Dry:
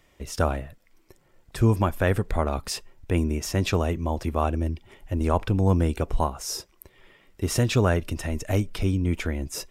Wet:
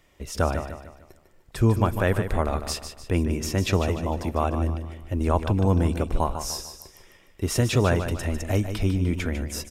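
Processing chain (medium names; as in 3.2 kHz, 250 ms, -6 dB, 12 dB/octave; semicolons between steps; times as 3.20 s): feedback delay 150 ms, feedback 41%, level -9 dB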